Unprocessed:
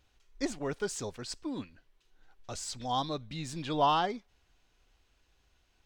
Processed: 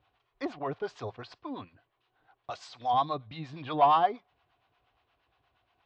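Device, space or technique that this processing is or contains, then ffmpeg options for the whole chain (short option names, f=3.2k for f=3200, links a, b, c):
guitar amplifier with harmonic tremolo: -filter_complex "[0:a]acrossover=split=570[a][b];[a]aeval=exprs='val(0)*(1-0.7/2+0.7/2*cos(2*PI*8.5*n/s))':c=same[c];[b]aeval=exprs='val(0)*(1-0.7/2-0.7/2*cos(2*PI*8.5*n/s))':c=same[d];[c][d]amix=inputs=2:normalize=0,asoftclip=type=tanh:threshold=-24.5dB,highpass=100,equalizer=f=110:t=q:w=4:g=6,equalizer=f=210:t=q:w=4:g=-8,equalizer=f=720:t=q:w=4:g=10,equalizer=f=1.1k:t=q:w=4:g=9,lowpass=f=3.7k:w=0.5412,lowpass=f=3.7k:w=1.3066,asettb=1/sr,asplit=3[e][f][g];[e]atrim=end=2.504[h];[f]atrim=start=2.5:end=2.94,asetpts=PTS-STARTPTS,afade=t=in:d=0.004:c=qsin,afade=t=out:st=0.436:d=0.004:c=qsin,aemphasis=mode=production:type=bsi[i];[g]atrim=start=2.936[j];[h][i]acrossfade=d=0.004:c1=hsin:c2=qsin[k];[k][j]acrossfade=d=0.004:c1=qsin:c2=hsin,volume=2.5dB"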